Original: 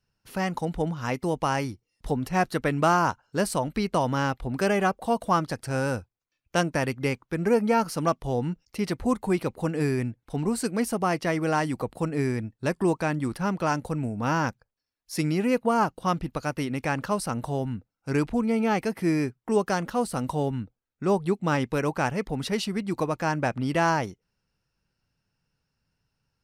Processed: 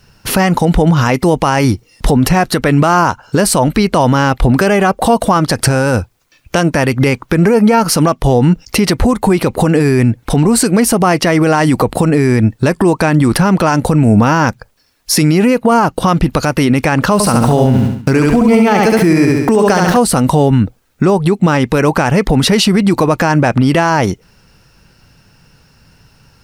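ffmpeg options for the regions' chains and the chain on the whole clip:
-filter_complex "[0:a]asettb=1/sr,asplit=3[a][b][c];[a]atrim=end=17.134[d];[b]atrim=start=17.13:end=19.97,asetpts=PTS-STARTPTS,afade=t=in:d=0.004:c=qsin,afade=t=out:st=2.836:d=0.004:c=qsin,aeval=exprs='val(0)*gte(abs(val(0)),0.00473)':c=same,aecho=1:1:69|138|207|276|345:0.631|0.24|0.0911|0.0346|0.0132,atrim=end_sample=125244[e];[c]atrim=start=19.966[f];[d][e]acrossfade=d=0.004:c1=hsin:c2=qsin[g];[g][f]acrossfade=d=0.004:c1=qsin:c2=hsin,acompressor=threshold=-32dB:ratio=6,alimiter=level_in=31dB:limit=-1dB:release=50:level=0:latency=1,volume=-1dB"

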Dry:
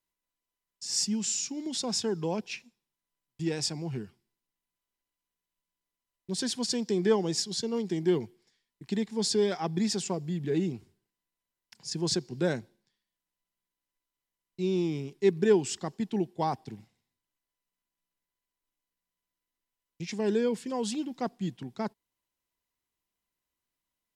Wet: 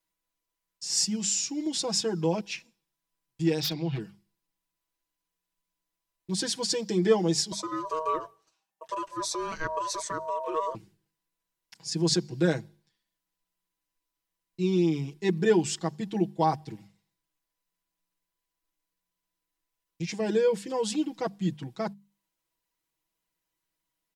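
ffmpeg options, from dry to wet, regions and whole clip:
-filter_complex "[0:a]asettb=1/sr,asplit=3[a][b][c];[a]atrim=end=3.604[d];[b]atrim=start=3.6:end=4,asetpts=PTS-STARTPTS,afade=t=in:d=0.004:c=qsin,afade=t=out:st=0.396:d=0.004:c=qsin,lowpass=f=3.6k:t=q:w=4.6,aeval=exprs='0.0473*(abs(mod(val(0)/0.0473+3,4)-2)-1)':c=same[e];[c]atrim=start=3.996[f];[d][e]acrossfade=d=0.004:c1=hsin:c2=qsin[g];[g][f]acrossfade=d=0.004:c1=qsin:c2=hsin,asettb=1/sr,asplit=3[h][i][j];[h]atrim=end=7.524[k];[i]atrim=start=7.52:end=10.75,asetpts=PTS-STARTPTS,afade=t=in:d=0.004:c=qsin,afade=t=out:st=3.226:d=0.004:c=qsin,asuperstop=centerf=3600:order=4:qfactor=2.5,acompressor=threshold=-31dB:ratio=1.5:attack=3.2:release=140:knee=1:detection=peak,aeval=exprs='val(0)*sin(2*PI*790*n/s)':c=same[l];[j]atrim=start=10.746[m];[k][l]acrossfade=d=0.004:c1=hsin:c2=qsin[n];[n][m]acrossfade=d=0.004:c1=qsin:c2=hsin,bandreject=f=50:t=h:w=6,bandreject=f=100:t=h:w=6,bandreject=f=150:t=h:w=6,bandreject=f=200:t=h:w=6,aecho=1:1:6.2:0.99"

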